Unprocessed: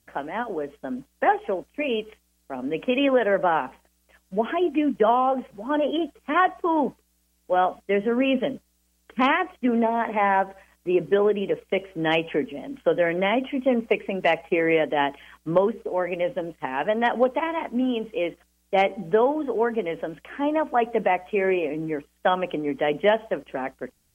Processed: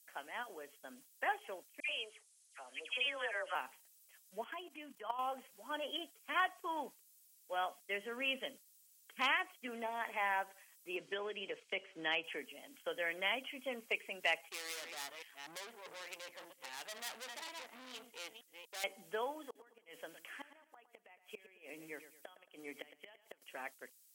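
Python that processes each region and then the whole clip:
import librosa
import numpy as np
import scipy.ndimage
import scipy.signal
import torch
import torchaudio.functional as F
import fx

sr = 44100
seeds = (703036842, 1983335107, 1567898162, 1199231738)

y = fx.chain(x, sr, fx.highpass(hz=560.0, slope=12),
    fx.dispersion(late='lows', ms=93.0, hz=1900.0),
    fx.resample_bad(factor=2, down='none', up='filtered'), at=(1.8, 3.55))
y = fx.chain(y, sr, fx.peak_eq(hz=1000.0, db=6.5, octaves=0.52),
    fx.level_steps(step_db=14), at=(4.44, 5.19))
y = fx.chain(y, sr, fx.air_absorb(metres=100.0),
    fx.band_squash(depth_pct=70), at=(10.96, 12.24))
y = fx.chain(y, sr, fx.reverse_delay(ms=245, wet_db=-10),
    fx.tube_stage(drive_db=31.0, bias=0.8), at=(14.49, 18.84))
y = fx.chain(y, sr, fx.gate_flip(shuts_db=-16.0, range_db=-26),
    fx.echo_feedback(ms=112, feedback_pct=37, wet_db=-13.0), at=(19.44, 23.42))
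y = scipy.signal.sosfilt(scipy.signal.butter(2, 61.0, 'highpass', fs=sr, output='sos'), y)
y = np.diff(y, prepend=0.0)
y = F.gain(torch.from_numpy(y), 2.0).numpy()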